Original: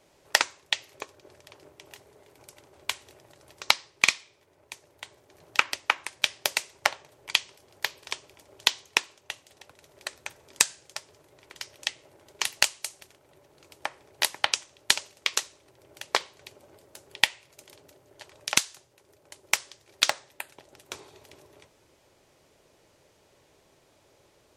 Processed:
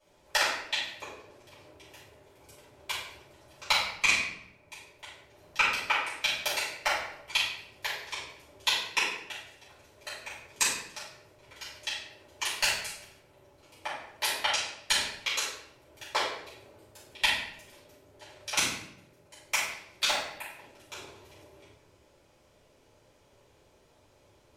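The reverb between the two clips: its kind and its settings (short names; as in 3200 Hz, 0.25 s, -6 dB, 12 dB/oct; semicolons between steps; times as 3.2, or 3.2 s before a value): shoebox room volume 220 m³, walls mixed, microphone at 5.7 m; gain -16 dB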